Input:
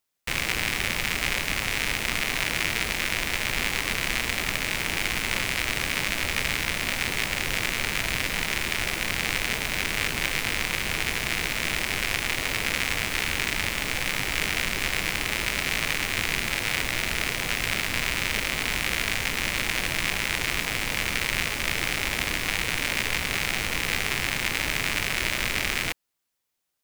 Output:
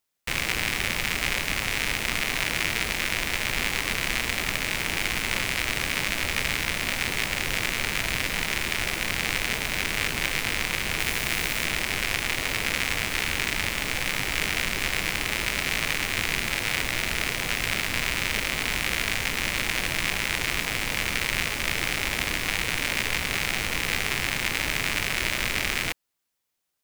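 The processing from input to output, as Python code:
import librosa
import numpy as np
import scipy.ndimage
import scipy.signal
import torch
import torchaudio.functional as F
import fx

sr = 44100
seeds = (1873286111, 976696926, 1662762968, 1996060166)

y = fx.high_shelf(x, sr, hz=9300.0, db=5.5, at=(10.99, 11.65))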